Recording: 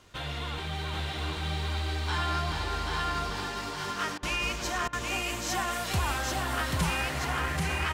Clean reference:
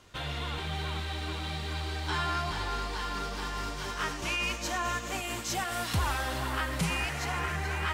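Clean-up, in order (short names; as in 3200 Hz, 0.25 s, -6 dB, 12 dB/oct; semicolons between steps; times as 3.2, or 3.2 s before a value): de-click; interpolate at 4.18/4.88, 48 ms; inverse comb 0.785 s -3 dB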